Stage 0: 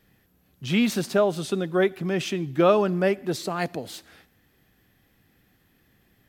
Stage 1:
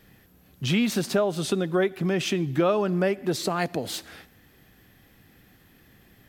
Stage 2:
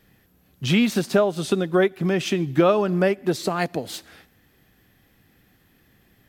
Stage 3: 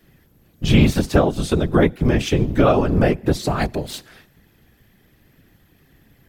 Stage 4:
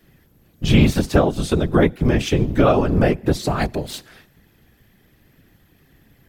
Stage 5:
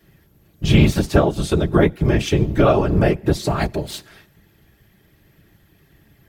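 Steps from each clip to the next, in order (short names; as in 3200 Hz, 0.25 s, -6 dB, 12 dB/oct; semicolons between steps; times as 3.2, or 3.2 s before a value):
compressor 2.5:1, threshold -31 dBFS, peak gain reduction 12 dB; gain +7 dB
upward expander 1.5:1, over -36 dBFS; gain +5.5 dB
octaver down 1 oct, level +3 dB; whisperiser; gain +1.5 dB
nothing audible
notch comb 250 Hz; gain +1.5 dB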